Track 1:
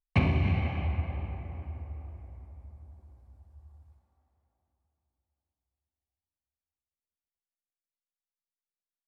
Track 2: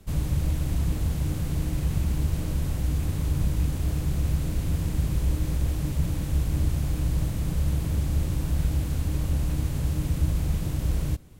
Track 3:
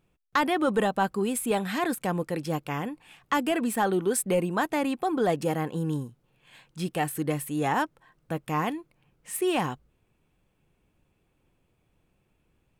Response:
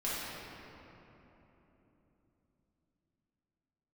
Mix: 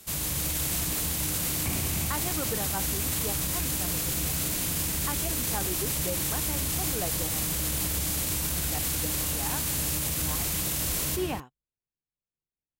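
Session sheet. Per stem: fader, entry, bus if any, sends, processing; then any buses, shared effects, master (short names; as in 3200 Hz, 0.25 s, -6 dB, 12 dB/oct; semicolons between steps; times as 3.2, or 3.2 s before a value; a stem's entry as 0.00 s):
-1.5 dB, 1.50 s, no send, dry
+1.0 dB, 0.00 s, send -12 dB, tilt +4 dB/oct; AGC gain up to 6.5 dB
0.0 dB, 1.75 s, no send, upward expander 2.5:1, over -41 dBFS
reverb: on, RT60 3.6 s, pre-delay 5 ms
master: limiter -19.5 dBFS, peak gain reduction 10.5 dB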